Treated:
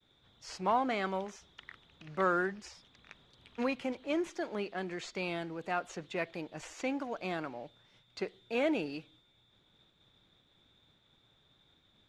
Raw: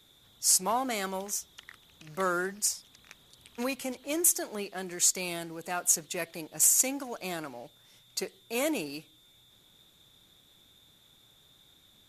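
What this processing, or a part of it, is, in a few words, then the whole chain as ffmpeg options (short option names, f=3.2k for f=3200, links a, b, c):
hearing-loss simulation: -filter_complex "[0:a]acrossover=split=4400[a][b];[b]acompressor=threshold=-42dB:ratio=4:attack=1:release=60[c];[a][c]amix=inputs=2:normalize=0,lowpass=3.1k,agate=range=-33dB:threshold=-60dB:ratio=3:detection=peak,asettb=1/sr,asplit=3[d][e][f];[d]atrim=end=8.374[g];[e]atrim=start=8.37:end=8.97,asetpts=PTS-STARTPTS,afade=t=in:d=0.004:c=qsin,afade=t=out:st=0.596:d=0.004:c=qsin,bandreject=f=1.1k:w=6.2[h];[f]atrim=start=8.966[i];[g][h]acrossfade=d=0.004:c1=hsin:c2=qsin[j];[j][i]acrossfade=d=0.004:c1=qsin:c2=hsin"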